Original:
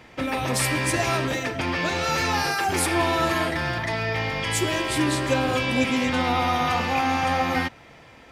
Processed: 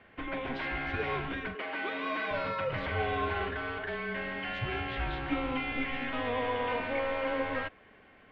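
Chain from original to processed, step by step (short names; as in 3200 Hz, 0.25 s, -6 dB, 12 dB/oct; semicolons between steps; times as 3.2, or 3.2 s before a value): mistuned SSB -250 Hz 310–3500 Hz; 1.55–2.31 HPF 240 Hz 24 dB/oct; gain -8 dB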